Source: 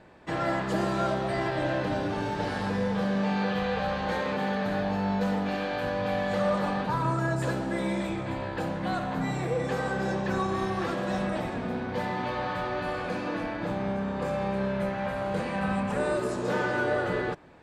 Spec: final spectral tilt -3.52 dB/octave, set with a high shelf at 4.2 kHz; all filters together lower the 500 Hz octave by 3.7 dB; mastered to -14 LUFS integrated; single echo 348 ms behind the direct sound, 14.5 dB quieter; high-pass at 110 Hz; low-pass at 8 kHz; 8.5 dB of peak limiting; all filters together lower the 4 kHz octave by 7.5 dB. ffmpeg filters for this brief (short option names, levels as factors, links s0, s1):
-af "highpass=110,lowpass=8000,equalizer=f=500:t=o:g=-4.5,equalizer=f=4000:t=o:g=-7.5,highshelf=f=4200:g=-4,alimiter=level_in=1.19:limit=0.0631:level=0:latency=1,volume=0.841,aecho=1:1:348:0.188,volume=10"